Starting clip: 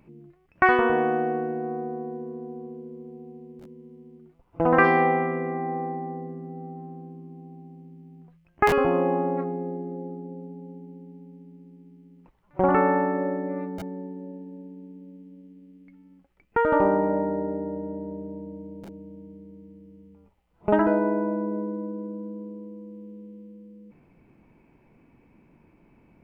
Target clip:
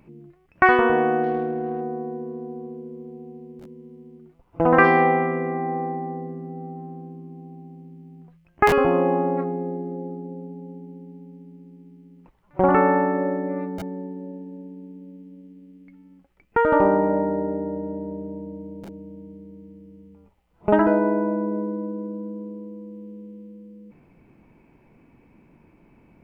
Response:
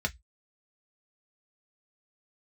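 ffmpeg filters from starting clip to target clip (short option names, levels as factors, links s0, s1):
-filter_complex "[0:a]asettb=1/sr,asplit=3[s0][s1][s2];[s0]atrim=end=1.234[s3];[s1]atrim=start=1.23:end=1.81,asetpts=PTS-STARTPTS,afade=t=in:d=0.004:c=qsin,afade=t=out:st=0.576:d=0.004:c=qsin,adynamicsmooth=sensitivity=2.5:basefreq=1700[s4];[s2]atrim=start=1.806[s5];[s3][s4]acrossfade=d=0.004:c1=hsin:c2=qsin[s6];[s6][s5]acrossfade=d=0.004:c1=qsin:c2=hsin,volume=1.41"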